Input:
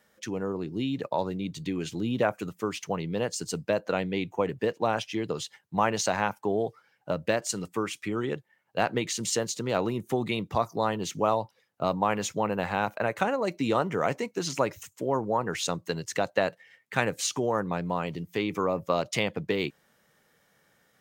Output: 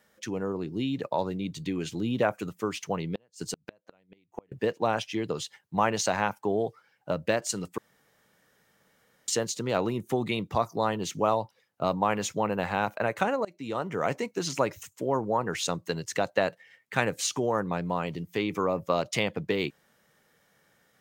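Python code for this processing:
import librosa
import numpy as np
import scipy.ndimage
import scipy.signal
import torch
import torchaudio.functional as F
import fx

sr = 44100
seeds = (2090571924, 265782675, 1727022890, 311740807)

y = fx.gate_flip(x, sr, shuts_db=-19.0, range_db=-37, at=(3.06, 4.52))
y = fx.edit(y, sr, fx.room_tone_fill(start_s=7.78, length_s=1.5),
    fx.fade_in_from(start_s=13.45, length_s=0.7, floor_db=-22.5), tone=tone)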